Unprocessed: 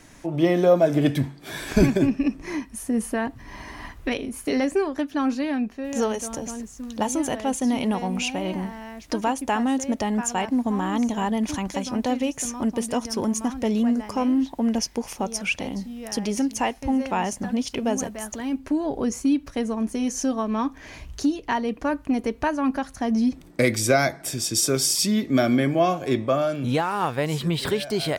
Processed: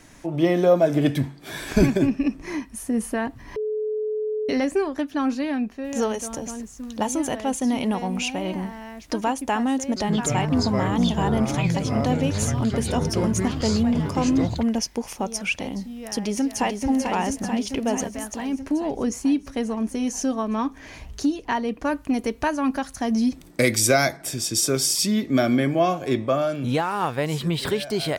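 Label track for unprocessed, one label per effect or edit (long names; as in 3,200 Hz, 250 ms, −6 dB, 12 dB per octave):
3.560000	4.490000	beep over 429 Hz −23 dBFS
9.800000	14.630000	delay with pitch and tempo change per echo 161 ms, each echo −6 semitones, echoes 3
15.990000	16.870000	delay throw 440 ms, feedback 70%, level −5.5 dB
21.850000	24.170000	high-shelf EQ 3,600 Hz +7 dB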